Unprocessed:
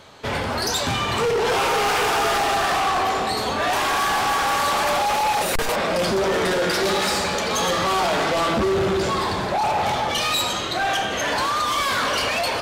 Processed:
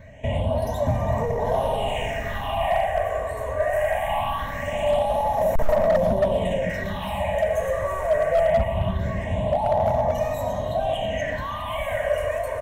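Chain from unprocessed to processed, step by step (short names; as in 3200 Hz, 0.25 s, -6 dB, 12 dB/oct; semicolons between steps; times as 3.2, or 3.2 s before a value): limiter -22.5 dBFS, peak gain reduction 5 dB; bell 360 Hz -3.5 dB 0.82 oct; phaser stages 6, 0.22 Hz, lowest notch 210–3000 Hz; tilt shelf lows +8.5 dB, about 780 Hz; fixed phaser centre 1300 Hz, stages 6; comb 3.2 ms, depth 32%; small resonant body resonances 630/1100/1900/2900 Hz, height 10 dB, ringing for 30 ms; on a send: split-band echo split 610 Hz, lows 0.137 s, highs 0.328 s, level -14.5 dB; on the sum: overloaded stage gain 17.5 dB; gain +4 dB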